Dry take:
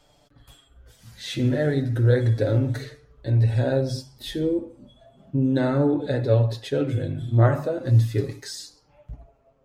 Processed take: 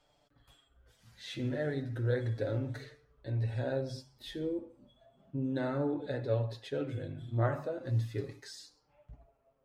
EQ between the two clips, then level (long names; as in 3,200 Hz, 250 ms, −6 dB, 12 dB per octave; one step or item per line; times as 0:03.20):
low-shelf EQ 440 Hz −6 dB
high-shelf EQ 5,200 Hz −9 dB
−8.0 dB